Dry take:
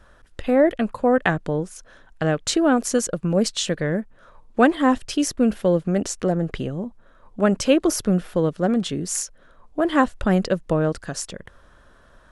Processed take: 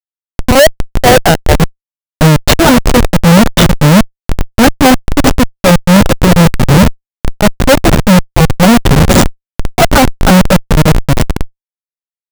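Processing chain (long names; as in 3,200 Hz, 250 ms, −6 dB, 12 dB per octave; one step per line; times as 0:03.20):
time-frequency cells dropped at random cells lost 26%
high-shelf EQ 2,200 Hz −8 dB
comb filter 1.4 ms, depth 84%
downward compressor 2 to 1, threshold −41 dBFS, peak gain reduction 16.5 dB
leveller curve on the samples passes 1
0:00.59–0:01.60: linear-phase brick-wall band-pass 490–2,900 Hz
feedback delay with all-pass diffusion 462 ms, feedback 61%, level −12 dB
comparator with hysteresis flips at −30.5 dBFS
boost into a limiter +32 dB
level −1 dB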